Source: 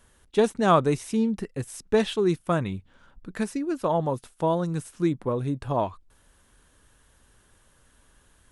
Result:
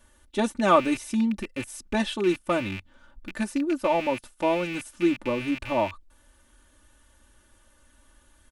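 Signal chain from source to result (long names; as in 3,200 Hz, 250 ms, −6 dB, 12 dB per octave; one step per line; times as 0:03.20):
loose part that buzzes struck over −40 dBFS, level −24 dBFS
comb filter 3.4 ms, depth 94%
level −2.5 dB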